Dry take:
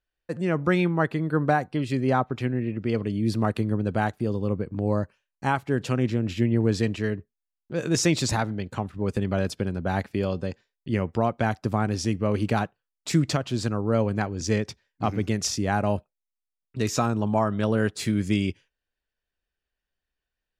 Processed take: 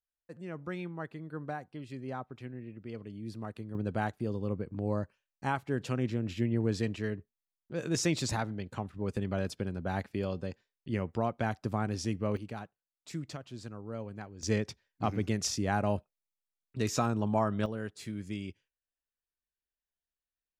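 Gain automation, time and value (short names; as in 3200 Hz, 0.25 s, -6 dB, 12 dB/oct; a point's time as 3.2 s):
-16.5 dB
from 3.75 s -7.5 dB
from 12.37 s -17 dB
from 14.43 s -5.5 dB
from 17.66 s -14.5 dB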